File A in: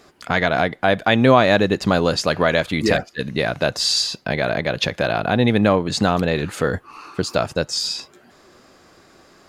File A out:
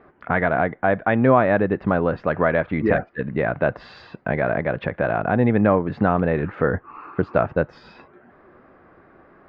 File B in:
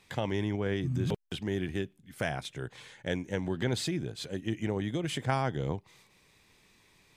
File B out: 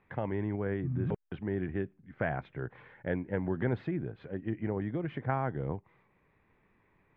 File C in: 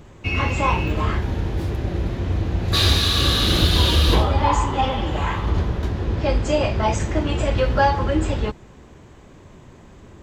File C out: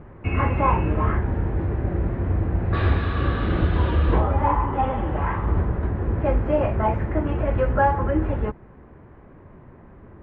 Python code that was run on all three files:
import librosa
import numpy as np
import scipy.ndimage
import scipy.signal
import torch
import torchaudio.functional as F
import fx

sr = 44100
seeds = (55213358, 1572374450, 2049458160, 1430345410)

p1 = scipy.signal.sosfilt(scipy.signal.butter(4, 1900.0, 'lowpass', fs=sr, output='sos'), x)
p2 = fx.rider(p1, sr, range_db=10, speed_s=2.0)
p3 = p1 + (p2 * librosa.db_to_amplitude(3.0))
y = p3 * librosa.db_to_amplitude(-9.0)